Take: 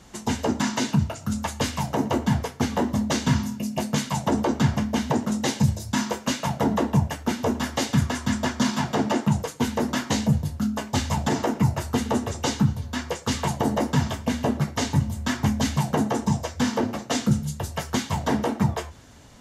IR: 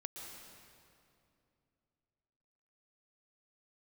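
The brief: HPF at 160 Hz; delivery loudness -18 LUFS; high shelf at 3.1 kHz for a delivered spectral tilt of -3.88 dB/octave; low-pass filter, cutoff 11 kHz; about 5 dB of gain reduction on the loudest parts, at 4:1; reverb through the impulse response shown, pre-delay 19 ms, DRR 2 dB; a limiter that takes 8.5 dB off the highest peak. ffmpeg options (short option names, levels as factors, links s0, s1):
-filter_complex "[0:a]highpass=160,lowpass=11000,highshelf=f=3100:g=7,acompressor=threshold=0.0631:ratio=4,alimiter=limit=0.106:level=0:latency=1,asplit=2[s0][s1];[1:a]atrim=start_sample=2205,adelay=19[s2];[s1][s2]afir=irnorm=-1:irlink=0,volume=1.06[s3];[s0][s3]amix=inputs=2:normalize=0,volume=3.35"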